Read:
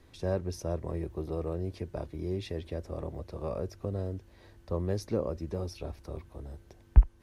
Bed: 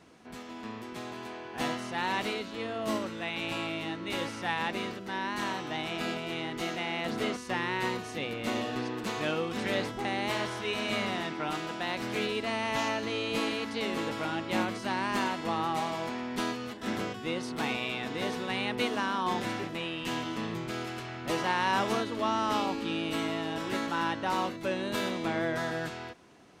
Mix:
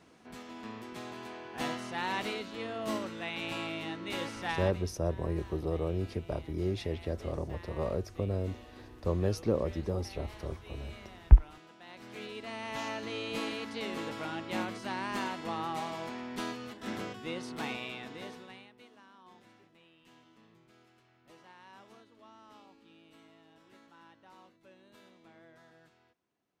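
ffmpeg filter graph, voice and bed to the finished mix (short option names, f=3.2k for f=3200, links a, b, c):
-filter_complex "[0:a]adelay=4350,volume=1.5dB[a];[1:a]volume=11.5dB,afade=t=out:st=4.51:d=0.32:silence=0.149624,afade=t=in:st=11.8:d=1.37:silence=0.188365,afade=t=out:st=17.64:d=1.07:silence=0.0794328[b];[a][b]amix=inputs=2:normalize=0"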